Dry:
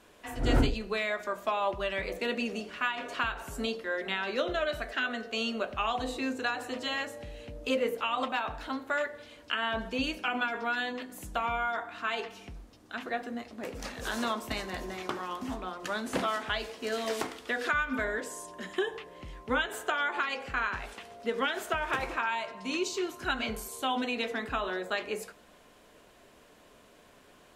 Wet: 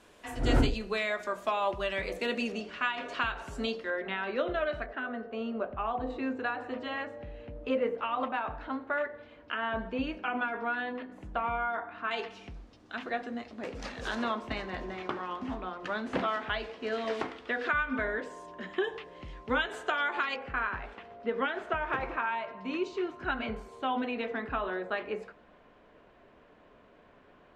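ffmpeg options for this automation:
-af "asetnsamples=n=441:p=0,asendcmd='2.52 lowpass f 5600;3.9 lowpass f 2300;4.86 lowpass f 1200;6.1 lowpass f 1900;12.11 lowpass f 5100;14.15 lowpass f 3000;18.84 lowpass f 5000;20.36 lowpass f 2100',lowpass=11k"

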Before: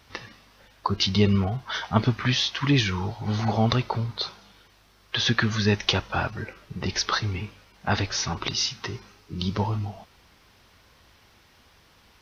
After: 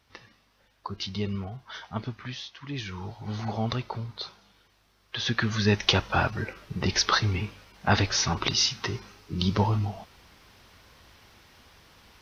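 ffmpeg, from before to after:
-af "volume=9dB,afade=t=out:st=1.82:d=0.83:silence=0.446684,afade=t=in:st=2.65:d=0.47:silence=0.298538,afade=t=in:st=5.16:d=0.93:silence=0.354813"

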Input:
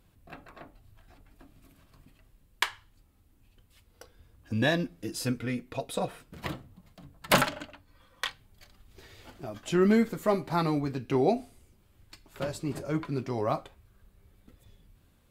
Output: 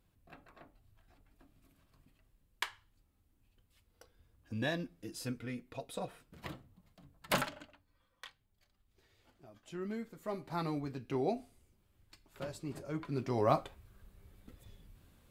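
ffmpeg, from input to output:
-af "volume=9dB,afade=t=out:st=7.31:d=0.93:silence=0.375837,afade=t=in:st=10.12:d=0.52:silence=0.354813,afade=t=in:st=12.98:d=0.55:silence=0.334965"

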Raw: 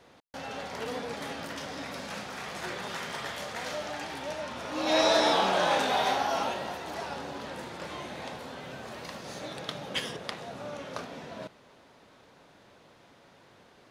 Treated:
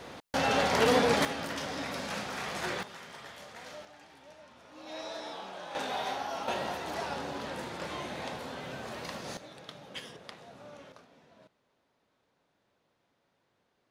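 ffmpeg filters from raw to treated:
-af "asetnsamples=n=441:p=0,asendcmd='1.25 volume volume 2dB;2.83 volume volume -10.5dB;3.85 volume volume -17.5dB;5.75 volume volume -7.5dB;6.48 volume volume 1dB;9.37 volume volume -10dB;10.92 volume volume -18dB',volume=11.5dB"

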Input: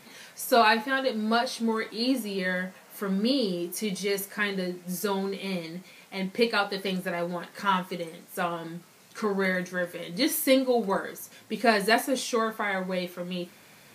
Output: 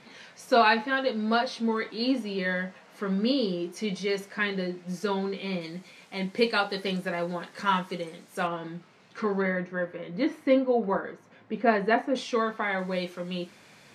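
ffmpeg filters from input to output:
-af "asetnsamples=n=441:p=0,asendcmd='5.61 lowpass f 7800;8.47 lowpass f 3600;9.42 lowpass f 1800;12.15 lowpass f 4000;12.79 lowpass f 7500',lowpass=4.6k"

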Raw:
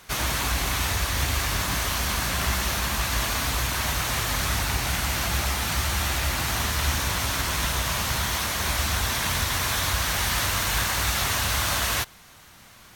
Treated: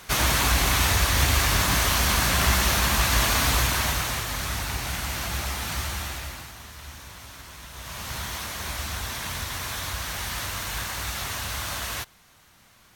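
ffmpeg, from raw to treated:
-af "volume=14.5dB,afade=t=out:st=3.55:d=0.7:silence=0.398107,afade=t=out:st=5.81:d=0.72:silence=0.223872,afade=t=in:st=7.7:d=0.48:silence=0.298538"

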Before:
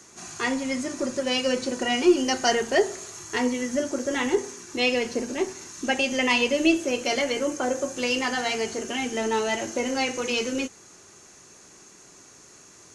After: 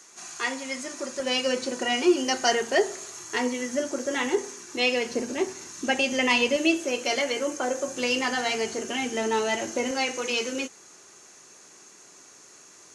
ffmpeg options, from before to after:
-af "asetnsamples=n=441:p=0,asendcmd='1.2 highpass f 290;5.1 highpass f 110;6.56 highpass f 340;7.88 highpass f 130;9.91 highpass f 360',highpass=f=760:p=1"

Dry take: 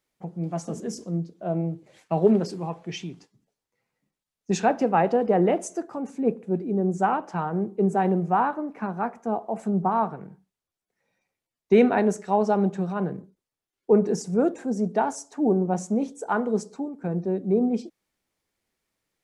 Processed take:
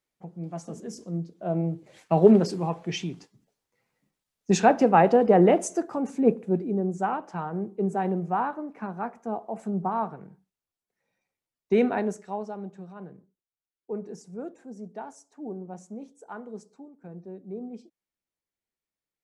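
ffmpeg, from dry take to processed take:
-af "volume=3dB,afade=t=in:st=0.88:d=1.33:silence=0.354813,afade=t=out:st=6.31:d=0.6:silence=0.421697,afade=t=out:st=11.9:d=0.62:silence=0.298538"

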